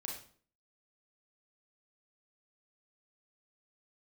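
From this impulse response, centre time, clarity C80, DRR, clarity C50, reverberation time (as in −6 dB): 37 ms, 8.5 dB, −1.5 dB, 4.0 dB, 0.50 s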